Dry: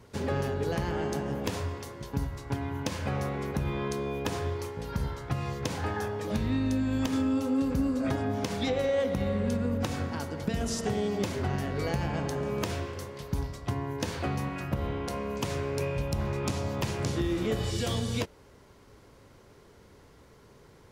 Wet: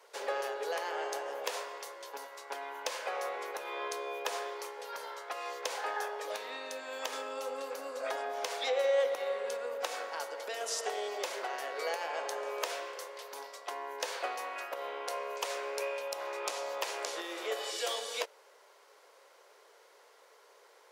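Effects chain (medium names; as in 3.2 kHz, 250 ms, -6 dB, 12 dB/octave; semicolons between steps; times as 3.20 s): steep high-pass 470 Hz 36 dB/octave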